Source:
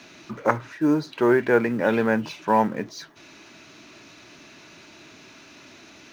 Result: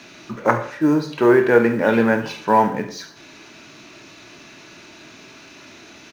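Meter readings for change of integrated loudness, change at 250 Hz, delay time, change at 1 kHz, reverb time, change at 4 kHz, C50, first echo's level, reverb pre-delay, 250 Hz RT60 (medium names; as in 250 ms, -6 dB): +4.5 dB, +4.5 dB, 70 ms, +5.0 dB, 0.55 s, +4.5 dB, 10.0 dB, -14.5 dB, 21 ms, 0.60 s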